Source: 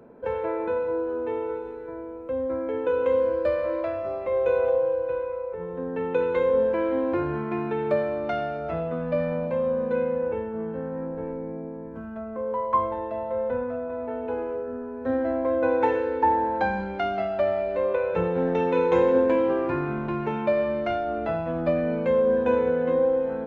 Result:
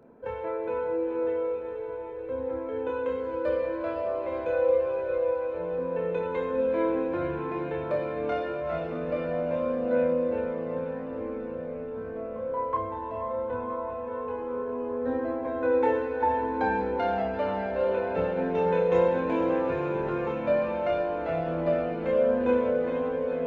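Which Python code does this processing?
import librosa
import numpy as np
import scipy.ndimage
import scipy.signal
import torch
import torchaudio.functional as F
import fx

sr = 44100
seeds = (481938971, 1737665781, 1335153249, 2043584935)

y = fx.echo_diffused(x, sr, ms=464, feedback_pct=73, wet_db=-6.5)
y = fx.chorus_voices(y, sr, voices=2, hz=0.2, base_ms=27, depth_ms=3.1, mix_pct=40)
y = y * librosa.db_to_amplitude(-1.5)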